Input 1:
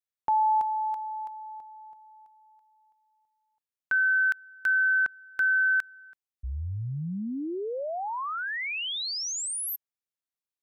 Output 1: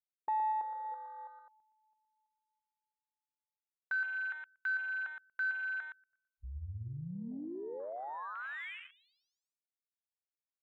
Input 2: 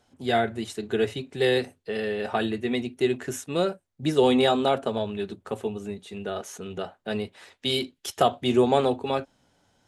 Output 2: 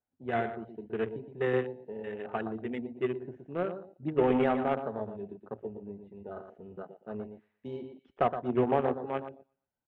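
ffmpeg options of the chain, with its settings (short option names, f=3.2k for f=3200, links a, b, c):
-filter_complex "[0:a]lowpass=f=2.5k:w=0.5412,lowpass=f=2.5k:w=1.3066,asplit=2[a][b];[b]aecho=0:1:118|236|354|472:0.447|0.138|0.0429|0.0133[c];[a][c]amix=inputs=2:normalize=0,aeval=exprs='0.447*(cos(1*acos(clip(val(0)/0.447,-1,1)))-cos(1*PI/2))+0.00891*(cos(3*acos(clip(val(0)/0.447,-1,1)))-cos(3*PI/2))+0.0251*(cos(7*acos(clip(val(0)/0.447,-1,1)))-cos(7*PI/2))':c=same,afwtdn=0.0141,volume=-5.5dB"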